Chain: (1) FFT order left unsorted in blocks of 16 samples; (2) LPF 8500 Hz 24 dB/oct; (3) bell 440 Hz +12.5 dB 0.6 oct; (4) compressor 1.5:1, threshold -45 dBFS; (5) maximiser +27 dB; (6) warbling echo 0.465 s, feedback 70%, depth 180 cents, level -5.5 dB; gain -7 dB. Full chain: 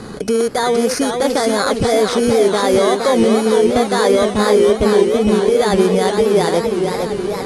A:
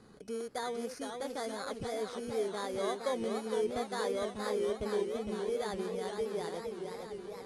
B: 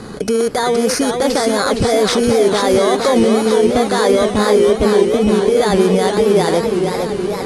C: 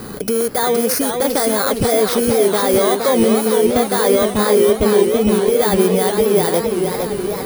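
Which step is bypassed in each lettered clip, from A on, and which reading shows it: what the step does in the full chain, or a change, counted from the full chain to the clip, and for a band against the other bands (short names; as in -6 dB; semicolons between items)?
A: 5, momentary loudness spread change +2 LU; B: 4, mean gain reduction 8.5 dB; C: 2, 8 kHz band +5.5 dB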